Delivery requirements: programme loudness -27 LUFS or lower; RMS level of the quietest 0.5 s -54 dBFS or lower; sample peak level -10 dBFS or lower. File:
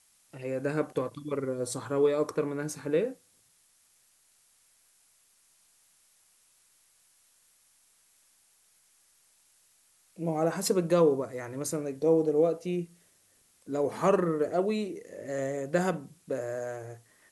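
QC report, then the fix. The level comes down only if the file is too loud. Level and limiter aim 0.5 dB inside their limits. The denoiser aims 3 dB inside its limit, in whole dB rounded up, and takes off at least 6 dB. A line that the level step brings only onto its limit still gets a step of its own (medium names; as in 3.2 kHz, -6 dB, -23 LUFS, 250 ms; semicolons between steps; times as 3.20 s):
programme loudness -30.0 LUFS: pass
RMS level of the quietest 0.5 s -66 dBFS: pass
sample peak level -12.5 dBFS: pass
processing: none needed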